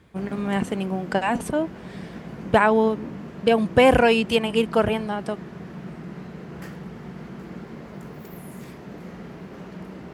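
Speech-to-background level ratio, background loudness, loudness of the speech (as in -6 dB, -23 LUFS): 16.5 dB, -38.0 LUFS, -21.5 LUFS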